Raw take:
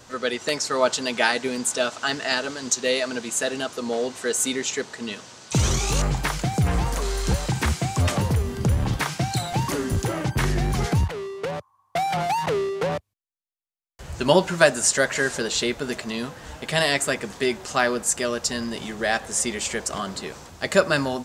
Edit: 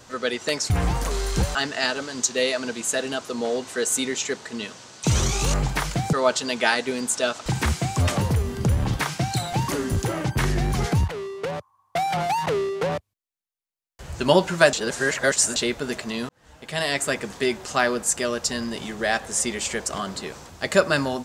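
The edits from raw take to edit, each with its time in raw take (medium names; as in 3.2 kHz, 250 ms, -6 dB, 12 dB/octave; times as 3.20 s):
0.70–2.03 s: swap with 6.61–7.46 s
14.73–15.56 s: reverse
16.29–17.15 s: fade in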